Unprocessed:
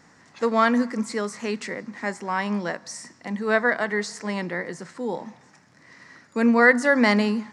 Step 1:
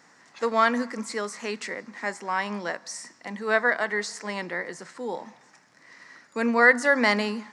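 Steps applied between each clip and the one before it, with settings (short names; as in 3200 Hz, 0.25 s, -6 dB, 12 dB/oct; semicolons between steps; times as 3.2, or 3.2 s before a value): HPF 470 Hz 6 dB/oct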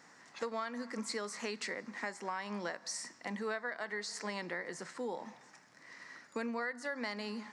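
dynamic EQ 4400 Hz, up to +5 dB, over -49 dBFS, Q 3.7; compressor 10:1, threshold -32 dBFS, peak gain reduction 20.5 dB; gain -3 dB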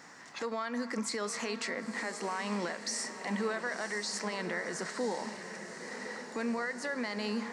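limiter -33 dBFS, peak gain reduction 9.5 dB; on a send: diffused feedback echo 1.019 s, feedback 57%, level -9.5 dB; on the sum: gain +7 dB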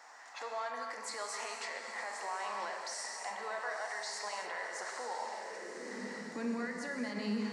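limiter -27.5 dBFS, peak gain reduction 4.5 dB; high-pass sweep 750 Hz -> 160 Hz, 5.27–6.18; non-linear reverb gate 0.3 s flat, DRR 2 dB; gain -5.5 dB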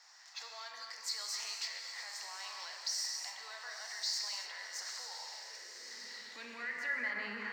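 careless resampling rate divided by 2×, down none, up hold; band-pass sweep 4900 Hz -> 1700 Hz, 6.06–7.15; mismatched tape noise reduction decoder only; gain +10 dB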